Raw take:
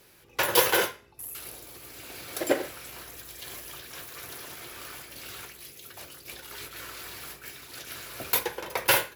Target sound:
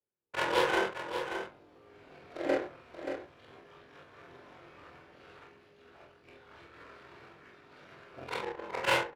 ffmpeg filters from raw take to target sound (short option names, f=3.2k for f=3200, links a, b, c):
-filter_complex "[0:a]afftfilt=real='re':imag='-im':win_size=4096:overlap=0.75,agate=range=-28dB:threshold=-53dB:ratio=16:detection=peak,highpass=f=92:p=1,acrossover=split=120|5300[a][b][c];[c]acompressor=threshold=-47dB:ratio=12[d];[a][b][d]amix=inputs=3:normalize=0,bandreject=f=60:t=h:w=6,bandreject=f=120:t=h:w=6,bandreject=f=180:t=h:w=6,asplit=2[e][f];[f]aeval=exprs='val(0)*gte(abs(val(0)),0.0141)':c=same,volume=-9dB[g];[e][g]amix=inputs=2:normalize=0,flanger=delay=19.5:depth=6.3:speed=0.52,adynamicsmooth=sensitivity=6:basefreq=1.4k,aecho=1:1:580:0.398,adynamicequalizer=threshold=0.00562:dfrequency=1700:dqfactor=0.7:tfrequency=1700:tqfactor=0.7:attack=5:release=100:ratio=0.375:range=2:mode=cutabove:tftype=highshelf,volume=2dB"